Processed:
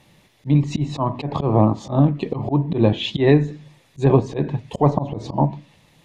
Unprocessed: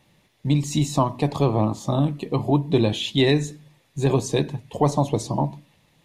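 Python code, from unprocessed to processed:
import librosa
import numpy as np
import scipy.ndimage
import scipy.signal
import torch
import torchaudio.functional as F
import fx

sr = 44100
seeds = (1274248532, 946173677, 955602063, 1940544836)

y = fx.env_lowpass_down(x, sr, base_hz=1700.0, full_db=-18.0)
y = fx.auto_swell(y, sr, attack_ms=118.0)
y = y * 10.0 ** (6.0 / 20.0)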